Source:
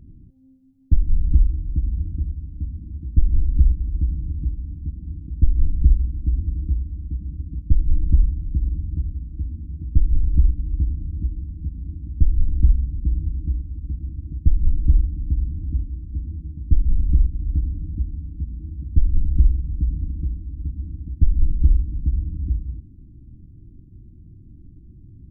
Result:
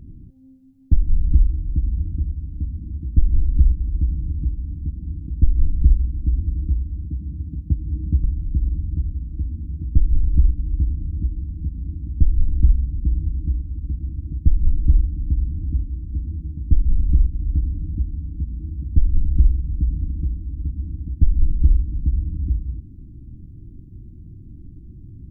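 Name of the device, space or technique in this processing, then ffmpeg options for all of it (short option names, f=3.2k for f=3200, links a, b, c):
parallel compression: -filter_complex "[0:a]asettb=1/sr,asplit=3[a][b][c];[a]atrim=end=7.054[d];[b]atrim=start=7.05:end=8.24,asetpts=PTS-STARTPTS,afade=t=in:d=0.004:c=qsin,afade=t=out:st=1.186:d=0.004:c=qsin,highpass=f=61:w=0.5412,highpass=f=61:w=1.3066[e];[c]atrim=start=8.236[f];[d][e]acrossfade=d=0.004:c1=hsin:c2=qsin[g];[g][f]acrossfade=d=0.004:c1=qsin:c2=hsin,asplit=2[h][i];[i]acompressor=threshold=-32dB:ratio=6,volume=-3dB[j];[h][j]amix=inputs=2:normalize=0"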